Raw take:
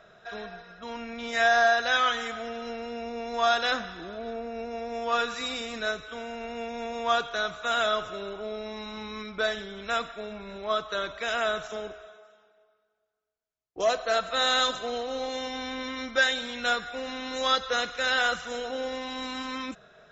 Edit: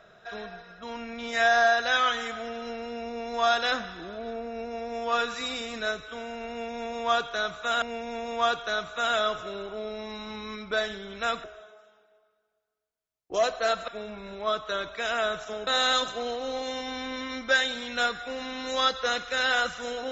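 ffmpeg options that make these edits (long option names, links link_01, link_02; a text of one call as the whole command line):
ffmpeg -i in.wav -filter_complex "[0:a]asplit=5[link_01][link_02][link_03][link_04][link_05];[link_01]atrim=end=7.822[link_06];[link_02]atrim=start=6.488:end=10.112[link_07];[link_03]atrim=start=11.898:end=14.342[link_08];[link_04]atrim=start=10.108:end=11.902[link_09];[link_05]atrim=start=14.338[link_10];[link_06][link_07]acrossfade=duration=0.004:curve1=hsin:curve2=hsin[link_11];[link_11][link_08]acrossfade=duration=0.004:curve1=hsin:curve2=hsin[link_12];[link_12][link_09]acrossfade=duration=0.004:curve1=hsin:curve2=hsin[link_13];[link_13][link_10]acrossfade=duration=0.004:curve1=hsin:curve2=hsin" out.wav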